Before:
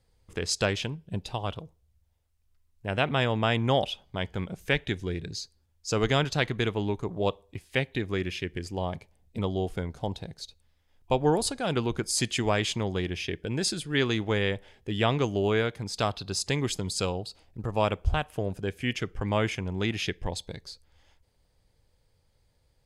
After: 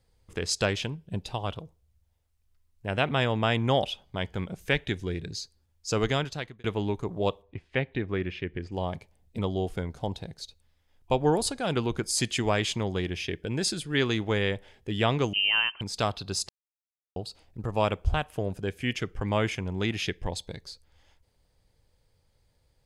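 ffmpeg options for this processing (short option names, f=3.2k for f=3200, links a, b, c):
-filter_complex "[0:a]asettb=1/sr,asplit=3[a][b][c];[a]atrim=end=7.424[d];[b]atrim=start=7.42:end=8.72,asetpts=PTS-STARTPTS,afade=t=in:d=0.004:c=qsin,afade=t=out:st=1.296:d=0.004:c=qsin,lowpass=2.5k[e];[c]atrim=start=8.716[f];[d][e]acrossfade=d=0.004:c1=hsin:c2=qsin[g];[g][f]acrossfade=d=0.004:c1=qsin:c2=hsin,asettb=1/sr,asplit=3[h][i][j];[h]atrim=end=15.334[k];[i]atrim=start=15.33:end=15.81,asetpts=PTS-STARTPTS,afade=t=in:d=0.004:c=qsin,afade=t=out:st=0.476:d=0.004:c=qsin,lowpass=f=2.7k:t=q:w=0.5098,lowpass=f=2.7k:t=q:w=0.6013,lowpass=f=2.7k:t=q:w=0.9,lowpass=f=2.7k:t=q:w=2.563,afreqshift=-3200[l];[j]atrim=start=15.806[m];[k][l]acrossfade=d=0.004:c1=hsin:c2=qsin[n];[n][m]acrossfade=d=0.004:c1=qsin:c2=hsin,asplit=4[o][p][q][r];[o]atrim=end=6.64,asetpts=PTS-STARTPTS,afade=t=out:st=5.98:d=0.66[s];[p]atrim=start=6.64:end=16.49,asetpts=PTS-STARTPTS,afade=t=in:d=0.004:c=hsin,afade=t=out:st=9.846:d=0.004:c=hsin[t];[q]atrim=start=16.49:end=17.16,asetpts=PTS-STARTPTS,volume=0[u];[r]atrim=start=17.16,asetpts=PTS-STARTPTS,afade=t=in:d=0.004:c=hsin[v];[s][t][u][v]concat=n=4:v=0:a=1"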